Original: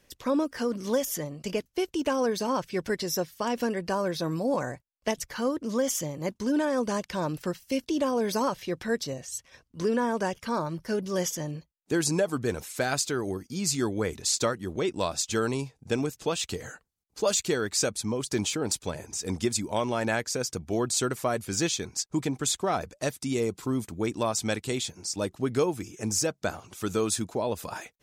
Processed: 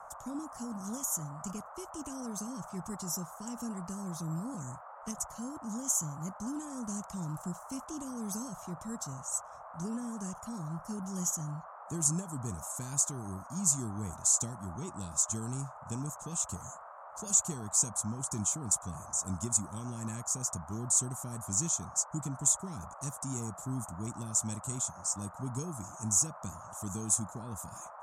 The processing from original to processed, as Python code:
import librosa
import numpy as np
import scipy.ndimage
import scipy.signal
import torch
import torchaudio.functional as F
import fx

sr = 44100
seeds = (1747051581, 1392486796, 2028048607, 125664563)

y = fx.curve_eq(x, sr, hz=(180.0, 690.0, 4800.0, 6800.0), db=(0, -28, -14, 11))
y = fx.dmg_noise_band(y, sr, seeds[0], low_hz=590.0, high_hz=1300.0, level_db=-46.0)
y = fx.air_absorb(y, sr, metres=54.0)
y = y * librosa.db_to_amplitude(-2.5)